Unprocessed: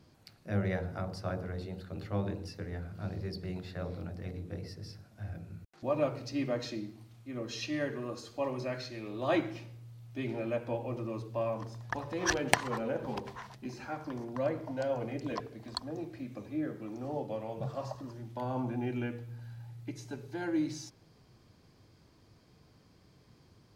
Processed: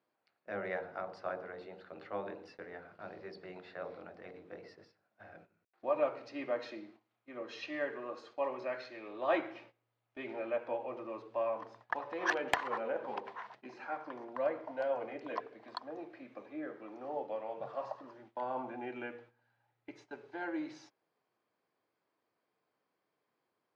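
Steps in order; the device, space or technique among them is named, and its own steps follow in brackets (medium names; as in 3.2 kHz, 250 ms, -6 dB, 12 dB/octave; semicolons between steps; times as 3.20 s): walkie-talkie (band-pass 520–2300 Hz; hard clipper -19 dBFS, distortion -17 dB; gate -59 dBFS, range -14 dB); trim +1.5 dB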